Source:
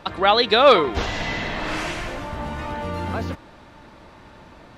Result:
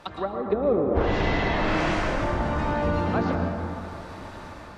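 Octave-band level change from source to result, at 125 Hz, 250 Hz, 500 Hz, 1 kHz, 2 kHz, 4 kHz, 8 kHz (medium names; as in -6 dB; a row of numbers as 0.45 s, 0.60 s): +3.5 dB, +3.0 dB, -4.0 dB, -6.0 dB, -3.5 dB, -13.5 dB, -6.5 dB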